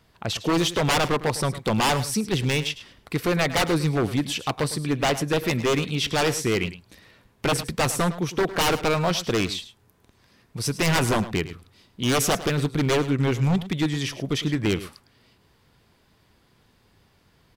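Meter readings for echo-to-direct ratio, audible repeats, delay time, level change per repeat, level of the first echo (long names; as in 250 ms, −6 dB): −14.5 dB, 1, 106 ms, repeats not evenly spaced, −14.5 dB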